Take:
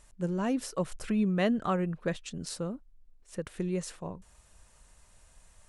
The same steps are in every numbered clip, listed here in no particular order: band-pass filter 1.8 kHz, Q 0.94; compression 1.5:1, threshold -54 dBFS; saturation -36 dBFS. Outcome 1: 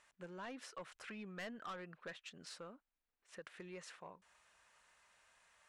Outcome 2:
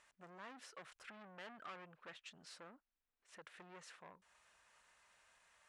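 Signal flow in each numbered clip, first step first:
band-pass filter > saturation > compression; saturation > compression > band-pass filter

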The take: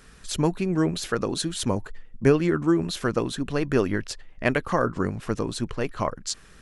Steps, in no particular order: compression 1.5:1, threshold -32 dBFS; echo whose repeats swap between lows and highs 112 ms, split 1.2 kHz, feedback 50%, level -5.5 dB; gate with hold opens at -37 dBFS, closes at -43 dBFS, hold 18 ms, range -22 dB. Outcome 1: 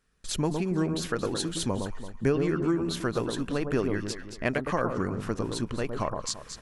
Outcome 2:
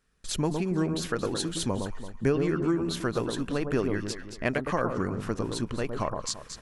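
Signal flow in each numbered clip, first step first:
echo whose repeats swap between lows and highs > gate with hold > compression; echo whose repeats swap between lows and highs > compression > gate with hold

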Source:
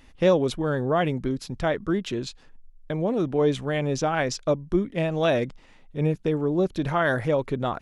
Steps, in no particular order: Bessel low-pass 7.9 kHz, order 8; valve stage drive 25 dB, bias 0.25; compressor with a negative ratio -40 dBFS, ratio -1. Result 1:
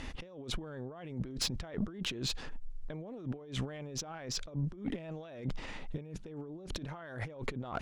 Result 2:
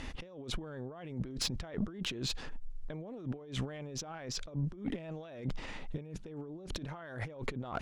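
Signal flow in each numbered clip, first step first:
Bessel low-pass > compressor with a negative ratio > valve stage; compressor with a negative ratio > Bessel low-pass > valve stage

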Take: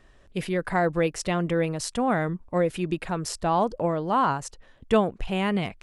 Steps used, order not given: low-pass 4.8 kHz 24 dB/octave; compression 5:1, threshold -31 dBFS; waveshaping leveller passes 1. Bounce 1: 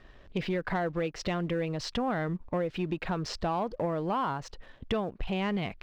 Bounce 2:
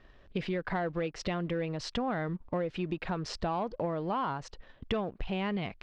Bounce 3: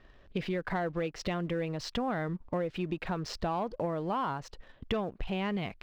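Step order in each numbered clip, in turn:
low-pass > compression > waveshaping leveller; waveshaping leveller > low-pass > compression; low-pass > waveshaping leveller > compression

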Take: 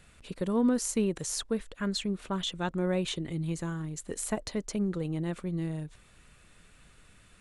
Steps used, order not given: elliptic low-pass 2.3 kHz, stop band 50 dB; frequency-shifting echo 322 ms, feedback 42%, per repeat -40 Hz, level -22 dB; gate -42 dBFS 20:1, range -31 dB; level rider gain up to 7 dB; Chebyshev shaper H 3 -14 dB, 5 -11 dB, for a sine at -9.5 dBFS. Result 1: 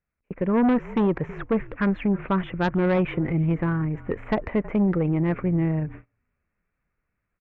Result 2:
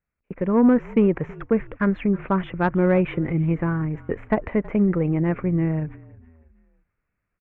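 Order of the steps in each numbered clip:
level rider > frequency-shifting echo > gate > elliptic low-pass > Chebyshev shaper; elliptic low-pass > Chebyshev shaper > gate > level rider > frequency-shifting echo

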